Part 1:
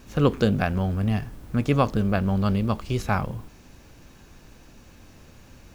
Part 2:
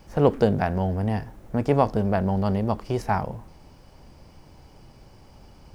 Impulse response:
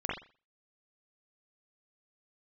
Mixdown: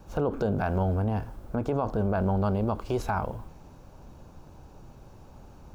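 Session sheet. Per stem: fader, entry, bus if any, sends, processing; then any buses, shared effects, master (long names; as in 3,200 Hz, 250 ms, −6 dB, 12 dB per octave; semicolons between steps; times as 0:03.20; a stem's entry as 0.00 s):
−4.5 dB, 0.00 s, no send, downward compressor 6 to 1, threshold −25 dBFS, peak gain reduction 11 dB; multiband upward and downward expander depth 40%
+0.5 dB, 0.00 s, no send, Butterworth low-pass 1,600 Hz 96 dB per octave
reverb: not used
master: brickwall limiter −17.5 dBFS, peak gain reduction 11 dB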